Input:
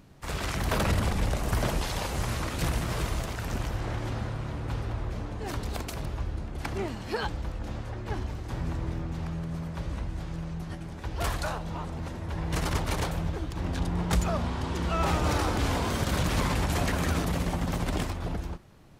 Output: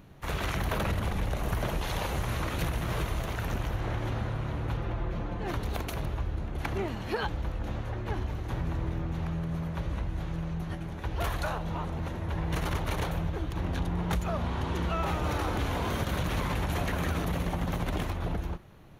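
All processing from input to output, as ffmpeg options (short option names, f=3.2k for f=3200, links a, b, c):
-filter_complex "[0:a]asettb=1/sr,asplit=3[a][b][c];[a]atrim=end=4.774[d];[b]atrim=start=4.77:end=5.54,asetpts=PTS-STARTPTS,afade=t=in:d=0.004:c=qsin,afade=t=out:st=0.766:d=0.004:c=qsin,highshelf=f=6.3k:g=-10,aecho=1:1:5.8:0.48,atrim=end_sample=33957[e];[c]atrim=start=5.536[f];[d][e]acrossfade=d=0.004:c1=hsin:c2=qsin[g];[g][f]acrossfade=d=0.004:c1=qsin:c2=hsin,equalizer=f=250:t=o:w=0.33:g=-3,equalizer=f=5k:t=o:w=0.33:g=-9,equalizer=f=8k:t=o:w=0.33:g=-12,acompressor=threshold=-28dB:ratio=6,volume=2dB"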